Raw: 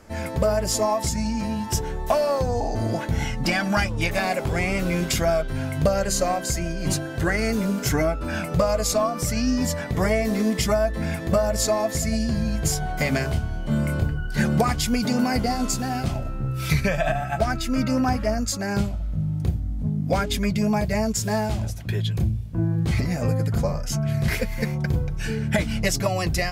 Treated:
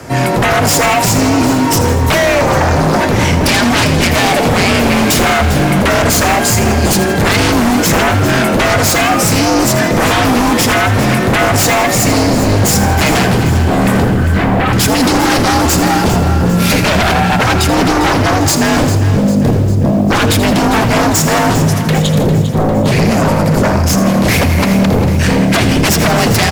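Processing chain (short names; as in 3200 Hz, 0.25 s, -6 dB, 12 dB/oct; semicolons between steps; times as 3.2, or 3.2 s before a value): in parallel at -1 dB: limiter -18.5 dBFS, peak gain reduction 9 dB; on the sum: frequency shift +47 Hz; sine folder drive 15 dB, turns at -3.5 dBFS; 14.14–14.73 air absorption 360 m; on a send: frequency-shifting echo 82 ms, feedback 57%, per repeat +43 Hz, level -11 dB; on the sum: lo-fi delay 0.4 s, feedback 55%, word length 5-bit, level -11 dB; gain -5 dB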